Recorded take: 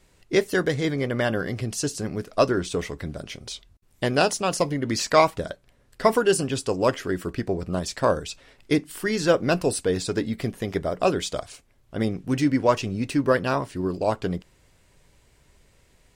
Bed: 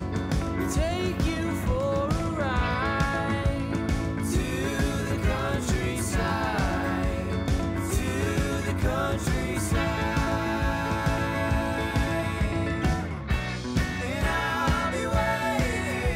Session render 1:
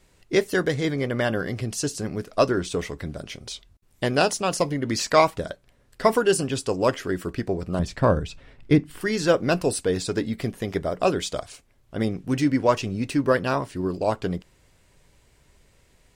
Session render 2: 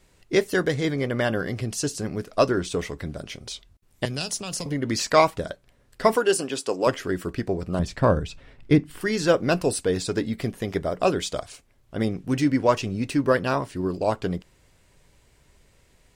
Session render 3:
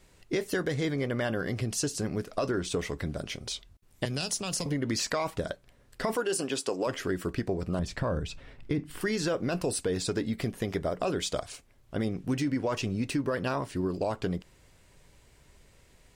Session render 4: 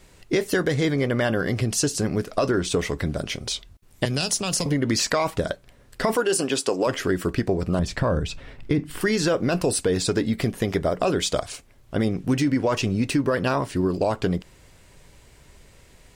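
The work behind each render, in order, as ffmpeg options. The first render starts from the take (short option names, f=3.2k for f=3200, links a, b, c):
-filter_complex "[0:a]asettb=1/sr,asplit=3[a][b][c];[a]atrim=end=7.794[d];[b]atrim=start=7.79:end=9.01,asetpts=PTS-STARTPTS,afade=t=in:d=0.004:c=qsin,afade=t=out:st=1.216:d=0.004:c=qsin,bass=f=250:g=10,treble=f=4k:g=-10[e];[c]atrim=start=9.006[f];[d][e]acrossfade=d=0.004:c1=hsin:c2=qsin[g];[g][f]acrossfade=d=0.004:c1=qsin:c2=hsin"
-filter_complex "[0:a]asettb=1/sr,asplit=3[a][b][c];[a]atrim=end=4.054[d];[b]atrim=start=4.05:end=4.66,asetpts=PTS-STARTPTS,afade=t=in:d=0.004:c=qsin,afade=t=out:st=0.606:d=0.004:c=qsin,acrossover=split=170|3000[e][f][g];[f]acompressor=threshold=-34dB:ratio=6:attack=3.2:release=140:knee=2.83:detection=peak[h];[e][h][g]amix=inputs=3:normalize=0[i];[c]atrim=start=4.656[j];[d][i]acrossfade=d=0.004:c1=hsin:c2=qsin[k];[k][j]acrossfade=d=0.004:c1=qsin:c2=hsin,asettb=1/sr,asplit=3[l][m][n];[l]atrim=end=6.164[o];[m]atrim=start=6.16:end=6.87,asetpts=PTS-STARTPTS,afade=t=in:d=0.004:c=qsin,afade=t=out:st=0.706:d=0.004:c=qsin,highpass=280[p];[n]atrim=start=6.866[q];[o][p]acrossfade=d=0.004:c1=hsin:c2=qsin[r];[r][q]acrossfade=d=0.004:c1=qsin:c2=hsin"
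-af "alimiter=limit=-15.5dB:level=0:latency=1:release=13,acompressor=threshold=-27dB:ratio=3"
-af "volume=7.5dB"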